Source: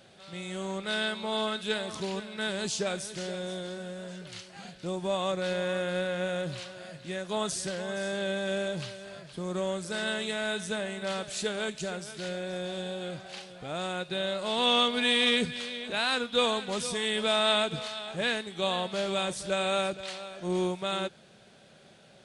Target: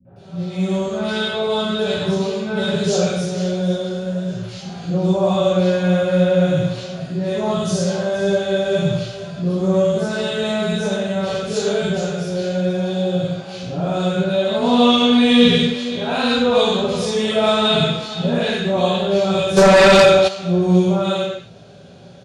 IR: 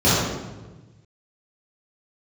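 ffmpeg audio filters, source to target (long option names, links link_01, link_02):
-filter_complex "[0:a]acrossover=split=260|1500[link_01][link_02][link_03];[link_02]adelay=50[link_04];[link_03]adelay=160[link_05];[link_01][link_04][link_05]amix=inputs=3:normalize=0[link_06];[1:a]atrim=start_sample=2205,afade=type=out:start_time=0.32:duration=0.01,atrim=end_sample=14553[link_07];[link_06][link_07]afir=irnorm=-1:irlink=0,asplit=3[link_08][link_09][link_10];[link_08]afade=type=out:start_time=19.56:duration=0.02[link_11];[link_09]aeval=exprs='2.11*sin(PI/2*2.51*val(0)/2.11)':channel_layout=same,afade=type=in:start_time=19.56:duration=0.02,afade=type=out:start_time=20.27:duration=0.02[link_12];[link_10]afade=type=in:start_time=20.27:duration=0.02[link_13];[link_11][link_12][link_13]amix=inputs=3:normalize=0,volume=-12.5dB"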